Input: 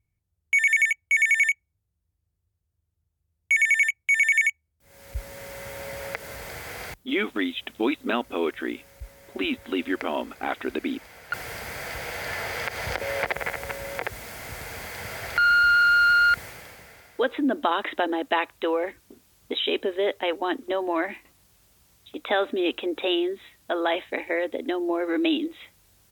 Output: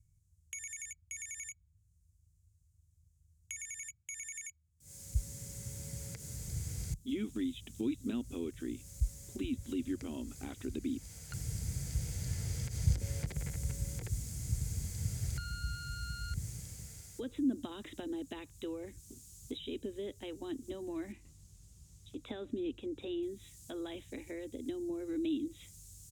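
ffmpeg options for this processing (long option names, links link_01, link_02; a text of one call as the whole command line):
ffmpeg -i in.wav -filter_complex "[0:a]asettb=1/sr,asplit=3[link_01][link_02][link_03];[link_01]atrim=end=3.954[link_04];[link_02]atrim=start=3.95:end=6.47,asetpts=PTS-STARTPTS,afade=type=in:duration=0.004:curve=qsin,afade=type=out:start_time=2.516:duration=0.004:curve=qsin,highpass=frequency=150:poles=1[link_05];[link_03]atrim=start=6.466[link_06];[link_04][link_05]acrossfade=duration=0.004:curve1=hsin:curve2=qsin[link_07];[link_07][link_06]acrossfade=duration=0.004:curve1=qsin:curve2=hsin,asettb=1/sr,asplit=3[link_08][link_09][link_10];[link_08]atrim=end=21.124[link_11];[link_09]atrim=start=21.12:end=23.23,asetpts=PTS-STARTPTS,afade=type=in:duration=0.004:curve=qsin,afade=type=out:start_time=2.106:duration=0.004:curve=qsin,lowpass=frequency=2400:poles=1[link_12];[link_10]atrim=start=23.226[link_13];[link_11][link_12]acrossfade=duration=0.004:curve1=hsin:curve2=qsin[link_14];[link_14][link_13]acrossfade=duration=0.004:curve1=qsin:curve2=hsin,firequalizer=gain_entry='entry(140,0);entry(220,-11);entry(650,-25);entry(1700,-24);entry(6900,5);entry(16000,-12)':delay=0.05:min_phase=1,acrossover=split=310[link_15][link_16];[link_16]acompressor=threshold=-58dB:ratio=3[link_17];[link_15][link_17]amix=inputs=2:normalize=0,volume=8.5dB" out.wav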